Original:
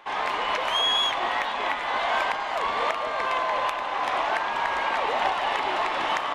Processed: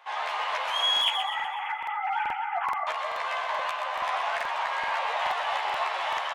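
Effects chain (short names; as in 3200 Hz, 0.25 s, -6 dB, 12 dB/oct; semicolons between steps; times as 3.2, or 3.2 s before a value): 1.02–2.87 sine-wave speech; HPF 590 Hz 24 dB/oct; in parallel at -6 dB: hard clip -20 dBFS, distortion -16 dB; on the sum: doubler 13 ms -2 dB; split-band echo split 1900 Hz, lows 0.271 s, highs 0.125 s, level -7 dB; crackling interface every 0.43 s, samples 2048, repeat, from 0.92; gain -9 dB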